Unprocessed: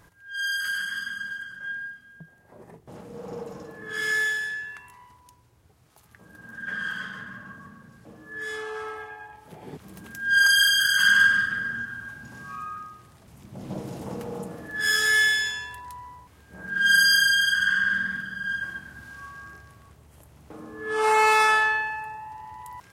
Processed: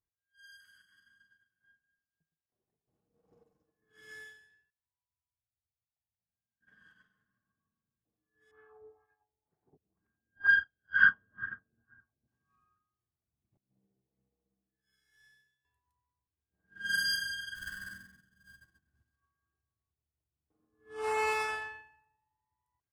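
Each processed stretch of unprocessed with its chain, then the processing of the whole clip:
0.53–3.08 sample gate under -54 dBFS + echo with dull and thin repeats by turns 0.114 s, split 1700 Hz, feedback 53%, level -7 dB
4.7–6.61 fixed phaser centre 1800 Hz, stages 8 + compressor 2:1, threshold -54 dBFS + bell 1700 Hz -8 dB 0.57 oct
8.51–12.28 LFO low-pass sine 2.1 Hz 490–1700 Hz + air absorption 98 m
13.57–15.65 resonator 65 Hz, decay 1.3 s, mix 90% + feedback echo 61 ms, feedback 56%, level -3 dB + mismatched tape noise reduction decoder only
17.55–19.16 switching dead time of 0.062 ms + tone controls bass +5 dB, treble +1 dB
whole clip: low shelf 280 Hz +9 dB; comb 2.7 ms, depth 32%; upward expander 2.5:1, over -40 dBFS; gain -4.5 dB

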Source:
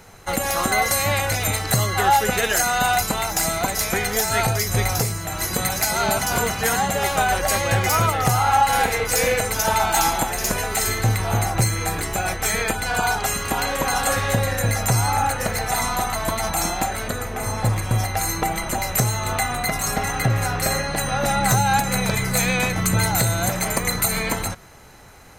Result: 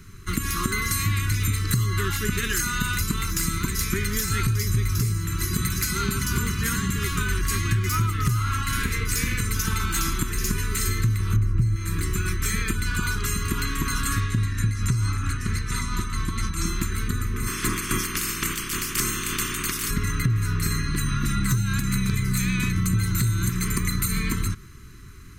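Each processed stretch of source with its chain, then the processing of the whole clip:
11.36–11.76 tilt -2.5 dB/oct + notch 3600 Hz, Q 9.6
14.2–16.66 LPF 9000 Hz + tremolo 4.5 Hz, depth 45%
17.46–19.89 spectral limiter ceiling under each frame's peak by 27 dB + bell 67 Hz -6.5 dB 1.7 oct + notch 4000 Hz
whole clip: elliptic band-stop 390–1100 Hz, stop band 40 dB; low shelf 260 Hz +11.5 dB; compressor 5:1, threshold -16 dBFS; gain -3.5 dB

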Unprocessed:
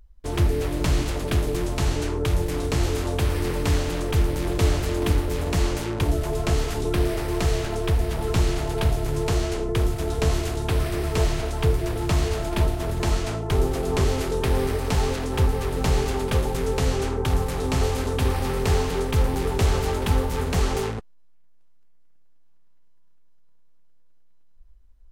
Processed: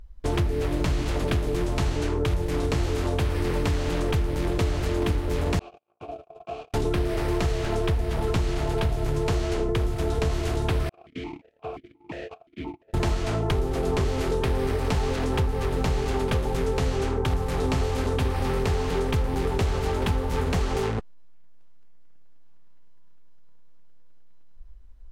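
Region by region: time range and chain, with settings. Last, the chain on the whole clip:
5.59–6.74 gate -23 dBFS, range -47 dB + dynamic EQ 1100 Hz, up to -6 dB, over -48 dBFS, Q 1.2 + vowel filter a
10.89–12.94 gate -23 dBFS, range -32 dB + vowel sequencer 5.7 Hz
whole clip: high shelf 6700 Hz -9 dB; compressor, threshold -28 dBFS; gain +6.5 dB

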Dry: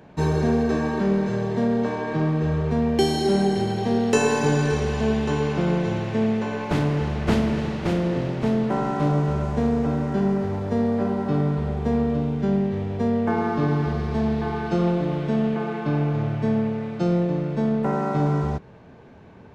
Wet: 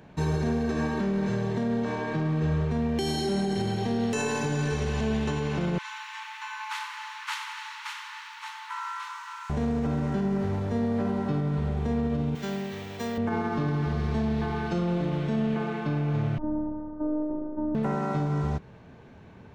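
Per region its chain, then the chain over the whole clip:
5.78–9.5 brick-wall FIR high-pass 830 Hz + lo-fi delay 93 ms, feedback 55%, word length 10-bit, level -11 dB
12.35–13.18 tilt +4 dB/oct + careless resampling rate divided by 2×, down filtered, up hold
16.38–17.75 inverse Chebyshev low-pass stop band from 2200 Hz + robotiser 305 Hz
whole clip: bell 520 Hz -4.5 dB 2.6 oct; notch 4900 Hz, Q 23; limiter -19.5 dBFS

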